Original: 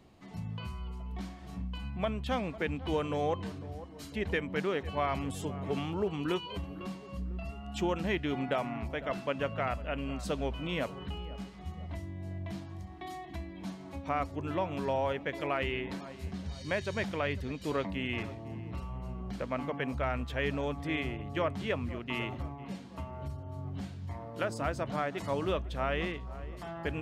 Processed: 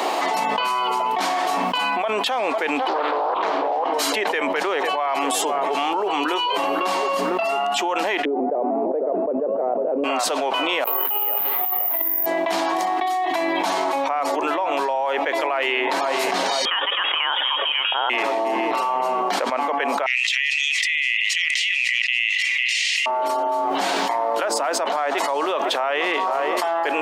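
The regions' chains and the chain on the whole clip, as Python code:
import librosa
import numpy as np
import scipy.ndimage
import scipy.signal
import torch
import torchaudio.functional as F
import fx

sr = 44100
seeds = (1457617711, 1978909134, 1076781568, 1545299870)

y = fx.chain(x, sr, fx.cheby1_lowpass(hz=3200.0, order=2),
    fx.peak_eq(hz=760.0, db=6.0, octaves=1.5),
    fx.doppler_dist(depth_ms=0.8), at=(2.88, 3.94))
y = fx.chain(y, sr, fx.lowpass_res(hz=450.0, q=2.8),
    fx.tilt_eq(slope=-3.0),
    fx.vibrato_shape(shape='saw_up', rate_hz=6.6, depth_cents=100.0), at=(8.25, 10.04))
y = fx.chain(y, sr, fx.lowpass(hz=3700.0, slope=24),
    fx.over_compress(threshold_db=-44.0, ratio=-0.5),
    fx.resample_bad(factor=3, down='none', up='zero_stuff'), at=(10.84, 12.26))
y = fx.chain(y, sr, fx.highpass(hz=400.0, slope=12),
    fx.freq_invert(carrier_hz=3500), at=(16.65, 18.1))
y = fx.chain(y, sr, fx.cheby_ripple_highpass(hz=1900.0, ripple_db=6),
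    fx.air_absorb(metres=69.0),
    fx.env_flatten(amount_pct=100), at=(20.06, 23.06))
y = scipy.signal.sosfilt(scipy.signal.bessel(8, 530.0, 'highpass', norm='mag', fs=sr, output='sos'), y)
y = fx.peak_eq(y, sr, hz=850.0, db=8.5, octaves=0.86)
y = fx.env_flatten(y, sr, amount_pct=100)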